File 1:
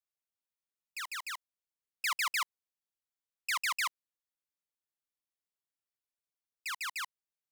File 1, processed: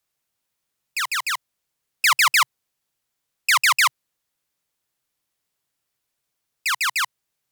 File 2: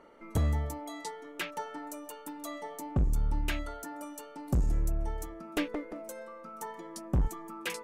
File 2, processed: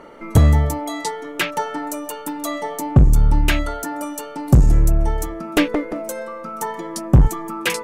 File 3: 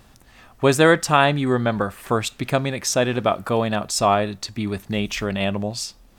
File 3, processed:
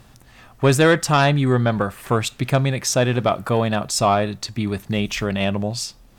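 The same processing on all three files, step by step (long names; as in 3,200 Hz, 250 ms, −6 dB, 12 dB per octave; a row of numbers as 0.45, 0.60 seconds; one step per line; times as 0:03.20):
parametric band 130 Hz +7 dB 0.43 octaves
sine wavefolder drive 4 dB, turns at −1.5 dBFS
loudness normalisation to −20 LKFS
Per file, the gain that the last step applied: +7.5, +7.0, −6.5 decibels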